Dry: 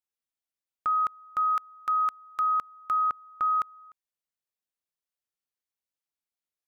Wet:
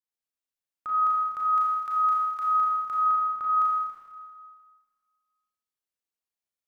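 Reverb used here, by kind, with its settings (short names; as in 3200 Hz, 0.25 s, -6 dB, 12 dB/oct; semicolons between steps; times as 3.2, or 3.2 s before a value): Schroeder reverb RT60 1.7 s, combs from 27 ms, DRR -5.5 dB; gain -8 dB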